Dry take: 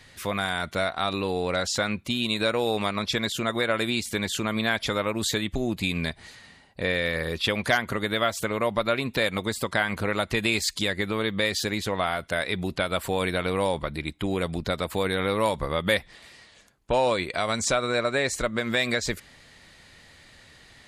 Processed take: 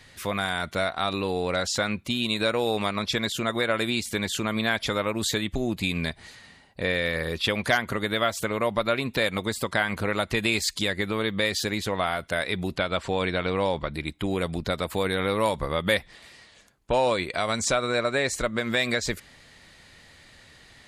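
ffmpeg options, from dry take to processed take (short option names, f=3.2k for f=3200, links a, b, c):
-filter_complex "[0:a]asettb=1/sr,asplit=3[a][b][c];[a]atrim=end=12.784[d];[b]atrim=start=12.78:end=13.94,asetpts=PTS-STARTPTS,afade=t=in:d=0.004:c=qsin,afade=t=out:st=1.156:d=0.004:c=qsin,lowpass=f=6.8k:w=0.5412,lowpass=f=6.8k:w=1.3066[e];[c]atrim=start=13.936[f];[d][e]acrossfade=d=0.004:c1=hsin:c2=qsin[g];[g][f]acrossfade=d=0.004:c1=qsin:c2=hsin"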